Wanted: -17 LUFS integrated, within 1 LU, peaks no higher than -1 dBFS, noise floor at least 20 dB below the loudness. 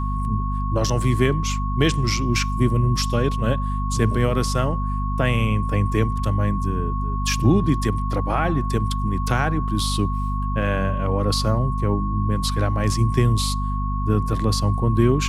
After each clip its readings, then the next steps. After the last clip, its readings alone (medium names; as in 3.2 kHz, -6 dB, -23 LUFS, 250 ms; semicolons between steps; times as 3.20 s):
hum 50 Hz; highest harmonic 250 Hz; hum level -22 dBFS; steady tone 1.1 kHz; tone level -29 dBFS; loudness -22.0 LUFS; peak level -5.0 dBFS; loudness target -17.0 LUFS
-> hum notches 50/100/150/200/250 Hz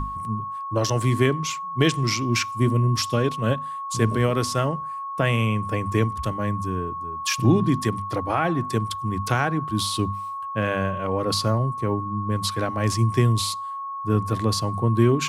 hum not found; steady tone 1.1 kHz; tone level -29 dBFS
-> band-stop 1.1 kHz, Q 30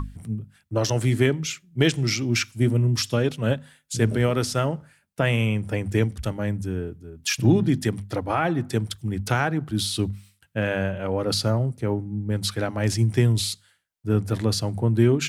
steady tone not found; loudness -24.5 LUFS; peak level -7.5 dBFS; loudness target -17.0 LUFS
-> trim +7.5 dB; peak limiter -1 dBFS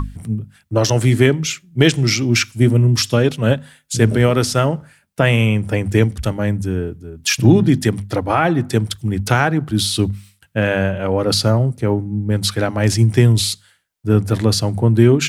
loudness -17.0 LUFS; peak level -1.0 dBFS; noise floor -58 dBFS